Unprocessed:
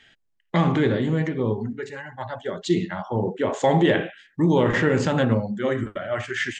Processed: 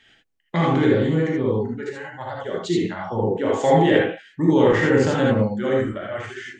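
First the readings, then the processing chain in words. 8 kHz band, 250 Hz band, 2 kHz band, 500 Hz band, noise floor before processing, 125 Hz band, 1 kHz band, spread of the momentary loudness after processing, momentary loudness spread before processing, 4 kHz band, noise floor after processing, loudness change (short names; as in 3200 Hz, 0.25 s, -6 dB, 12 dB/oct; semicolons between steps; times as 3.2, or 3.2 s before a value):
+0.5 dB, +2.5 dB, +1.0 dB, +3.5 dB, -70 dBFS, +0.5 dB, +3.0 dB, 14 LU, 12 LU, +0.5 dB, -59 dBFS, +2.5 dB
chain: ending faded out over 0.61 s; non-linear reverb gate 0.1 s rising, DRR -2.5 dB; gain -2.5 dB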